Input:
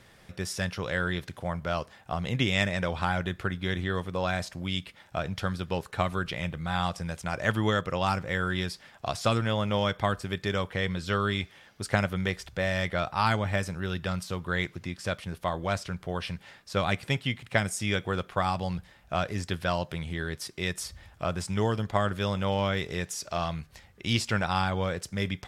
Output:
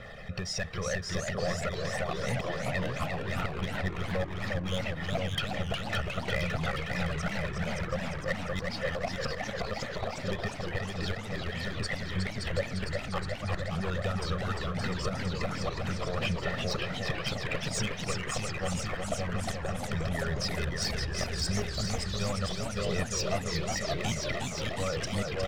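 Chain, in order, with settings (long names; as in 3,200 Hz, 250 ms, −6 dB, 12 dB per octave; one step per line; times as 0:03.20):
spectral envelope exaggerated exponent 1.5
low-pass filter 4,400 Hz 12 dB per octave
gate with flip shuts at −18 dBFS, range −34 dB
downward compressor 6 to 1, threshold −39 dBFS, peak gain reduction 14.5 dB
parametric band 83 Hz −9 dB 2.5 octaves
hard clipping −38 dBFS, distortion −11 dB
comb filter 1.6 ms, depth 96%
bouncing-ball delay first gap 570 ms, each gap 0.8×, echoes 5
leveller curve on the samples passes 1
on a send at −22.5 dB: convolution reverb RT60 0.35 s, pre-delay 3 ms
on the sum: phase shifter 0.79 Hz, delay 1.2 ms, feedback 29%
feedback echo with a swinging delay time 357 ms, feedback 74%, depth 201 cents, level −5 dB
level +6 dB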